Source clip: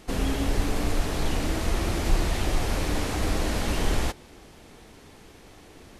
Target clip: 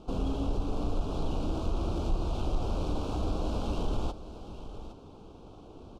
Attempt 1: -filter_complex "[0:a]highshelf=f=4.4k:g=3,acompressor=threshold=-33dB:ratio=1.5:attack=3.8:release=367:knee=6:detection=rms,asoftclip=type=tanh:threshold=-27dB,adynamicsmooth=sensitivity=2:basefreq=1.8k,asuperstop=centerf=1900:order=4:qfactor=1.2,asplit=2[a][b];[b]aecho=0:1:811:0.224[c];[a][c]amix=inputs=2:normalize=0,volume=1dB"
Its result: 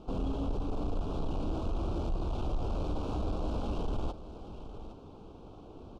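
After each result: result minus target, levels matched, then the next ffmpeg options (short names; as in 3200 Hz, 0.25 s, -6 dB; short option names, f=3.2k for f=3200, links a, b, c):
soft clip: distortion +14 dB; 8000 Hz band -5.0 dB
-filter_complex "[0:a]highshelf=f=4.4k:g=3,acompressor=threshold=-33dB:ratio=1.5:attack=3.8:release=367:knee=6:detection=rms,asoftclip=type=tanh:threshold=-17dB,adynamicsmooth=sensitivity=2:basefreq=1.8k,asuperstop=centerf=1900:order=4:qfactor=1.2,asplit=2[a][b];[b]aecho=0:1:811:0.224[c];[a][c]amix=inputs=2:normalize=0,volume=1dB"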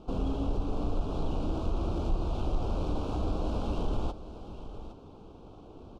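8000 Hz band -5.0 dB
-filter_complex "[0:a]highshelf=f=4.4k:g=10,acompressor=threshold=-33dB:ratio=1.5:attack=3.8:release=367:knee=6:detection=rms,asoftclip=type=tanh:threshold=-17dB,adynamicsmooth=sensitivity=2:basefreq=1.8k,asuperstop=centerf=1900:order=4:qfactor=1.2,asplit=2[a][b];[b]aecho=0:1:811:0.224[c];[a][c]amix=inputs=2:normalize=0,volume=1dB"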